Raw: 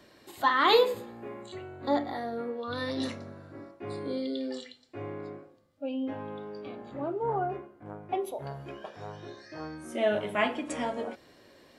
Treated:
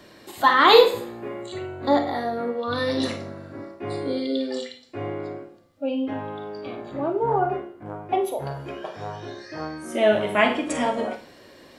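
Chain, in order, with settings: Schroeder reverb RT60 0.35 s, combs from 33 ms, DRR 7 dB; trim +7.5 dB

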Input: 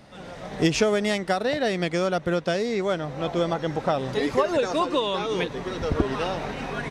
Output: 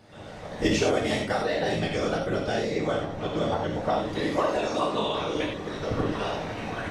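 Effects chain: whisper effect; gated-style reverb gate 120 ms flat, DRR -0.5 dB; trim -5.5 dB

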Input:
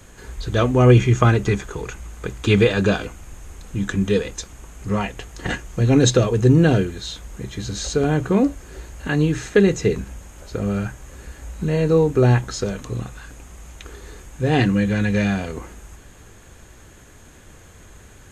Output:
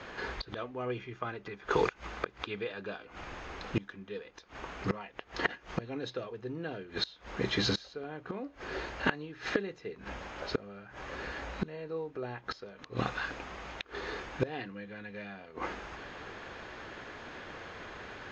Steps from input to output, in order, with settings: resonant low-pass 5.1 kHz, resonance Q 2.9; bass shelf 140 Hz -4.5 dB; inverted gate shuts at -18 dBFS, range -25 dB; overdrive pedal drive 20 dB, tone 1.7 kHz, clips at 0 dBFS; level-controlled noise filter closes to 2.9 kHz, open at -10.5 dBFS; trim -4.5 dB

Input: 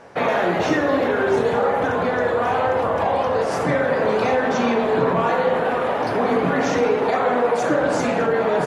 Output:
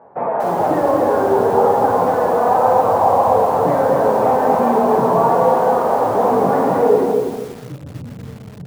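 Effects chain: high-pass 66 Hz 24 dB/octave; level rider gain up to 6.5 dB; flange 0.41 Hz, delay 4.5 ms, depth 6.2 ms, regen -60%; low-pass sweep 890 Hz -> 110 Hz, 6.81–7.32 s; bit-crushed delay 242 ms, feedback 35%, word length 6-bit, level -3.5 dB; trim -1 dB

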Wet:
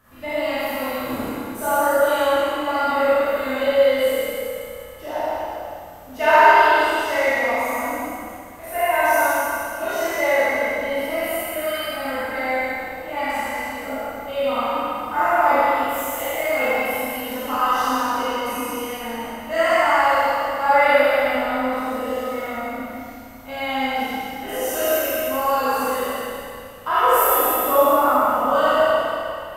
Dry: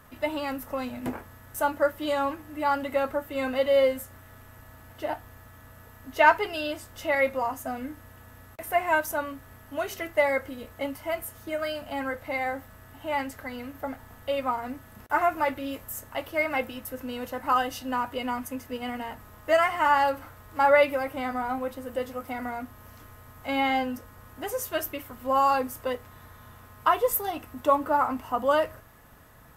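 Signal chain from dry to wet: spectral sustain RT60 2.12 s; Schroeder reverb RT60 1.8 s, combs from 27 ms, DRR -9.5 dB; trim -7.5 dB

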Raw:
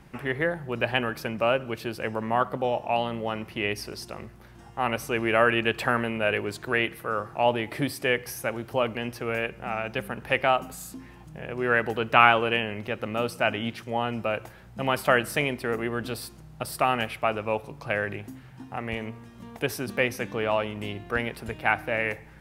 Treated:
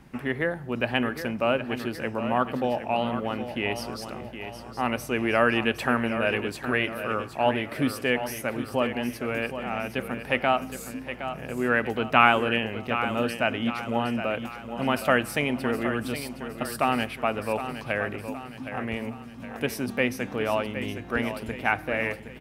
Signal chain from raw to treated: peaking EQ 250 Hz +8.5 dB 0.27 oct; on a send: feedback delay 766 ms, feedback 47%, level -10 dB; on the sum: trim -1 dB

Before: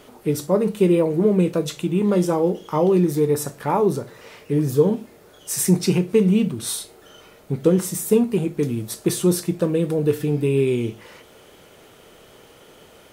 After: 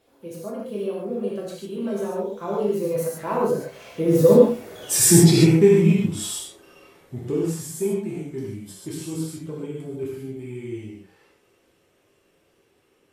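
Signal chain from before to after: coarse spectral quantiser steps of 15 dB; Doppler pass-by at 4.80 s, 40 m/s, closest 16 m; gated-style reverb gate 170 ms flat, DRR -4.5 dB; trim +4 dB

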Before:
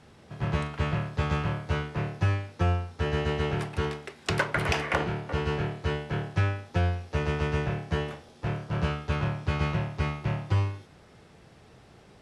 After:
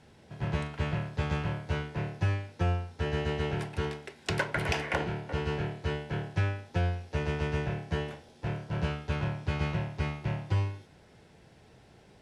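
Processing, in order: band-stop 1.2 kHz, Q 6; trim -3 dB

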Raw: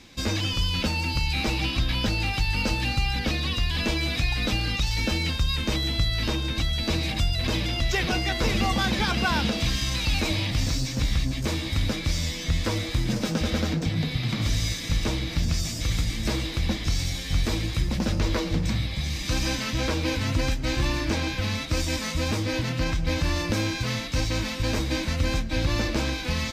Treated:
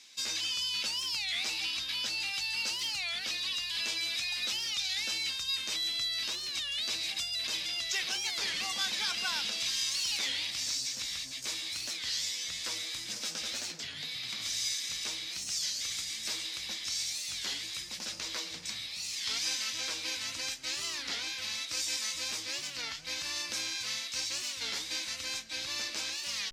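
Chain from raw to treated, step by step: band-pass filter 7 kHz, Q 0.77; warped record 33 1/3 rpm, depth 250 cents; trim +1.5 dB

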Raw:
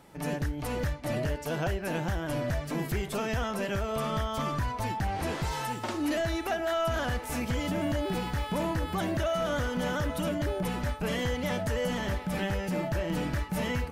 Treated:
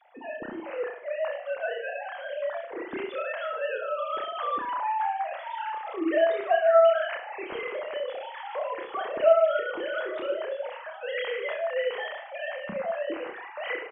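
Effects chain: formants replaced by sine waves; reverse bouncing-ball echo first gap 30 ms, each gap 1.15×, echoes 5

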